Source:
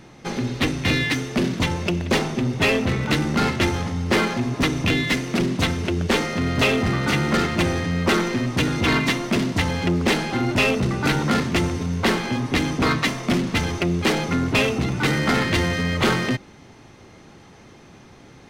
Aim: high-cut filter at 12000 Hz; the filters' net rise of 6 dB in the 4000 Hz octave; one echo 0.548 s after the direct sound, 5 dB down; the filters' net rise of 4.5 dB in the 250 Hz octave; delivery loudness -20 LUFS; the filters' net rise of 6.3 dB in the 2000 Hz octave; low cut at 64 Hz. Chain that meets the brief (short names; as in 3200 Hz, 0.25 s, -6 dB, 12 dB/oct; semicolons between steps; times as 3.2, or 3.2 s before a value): HPF 64 Hz; LPF 12000 Hz; bell 250 Hz +5.5 dB; bell 2000 Hz +6 dB; bell 4000 Hz +5.5 dB; echo 0.548 s -5 dB; gain -4 dB